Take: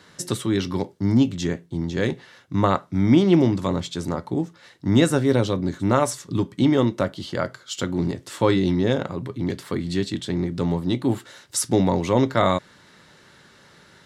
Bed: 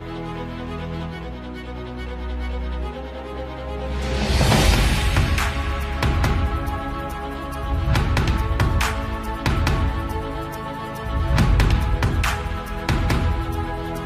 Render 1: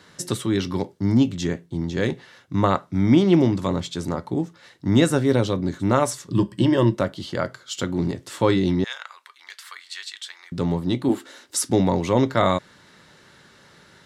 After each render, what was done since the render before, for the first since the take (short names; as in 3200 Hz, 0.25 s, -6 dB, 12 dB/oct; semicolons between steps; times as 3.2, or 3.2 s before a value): 6.32–6.95 ripple EQ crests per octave 1.3, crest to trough 12 dB; 8.84–10.52 HPF 1200 Hz 24 dB/oct; 11.09–11.7 resonant low shelf 200 Hz -9 dB, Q 3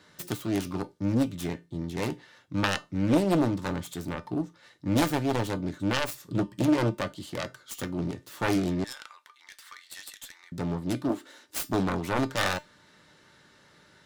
self-modulated delay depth 0.98 ms; resonator 300 Hz, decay 0.21 s, harmonics all, mix 60%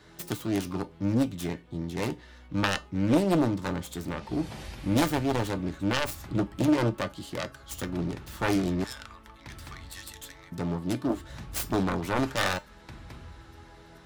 add bed -25 dB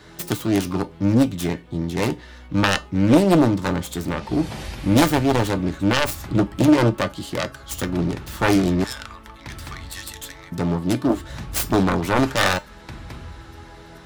gain +8.5 dB; limiter -3 dBFS, peak gain reduction 1.5 dB